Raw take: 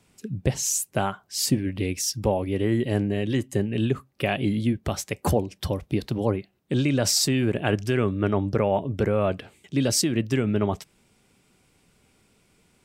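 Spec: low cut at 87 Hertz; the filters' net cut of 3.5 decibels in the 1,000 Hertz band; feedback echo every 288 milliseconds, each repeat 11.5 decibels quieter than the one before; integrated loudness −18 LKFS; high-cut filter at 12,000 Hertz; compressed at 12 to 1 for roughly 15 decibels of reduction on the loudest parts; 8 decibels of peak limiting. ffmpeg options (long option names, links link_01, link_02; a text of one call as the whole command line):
ffmpeg -i in.wav -af "highpass=87,lowpass=12000,equalizer=frequency=1000:width_type=o:gain=-5,acompressor=threshold=-33dB:ratio=12,alimiter=level_in=3.5dB:limit=-24dB:level=0:latency=1,volume=-3.5dB,aecho=1:1:288|576|864:0.266|0.0718|0.0194,volume=20.5dB" out.wav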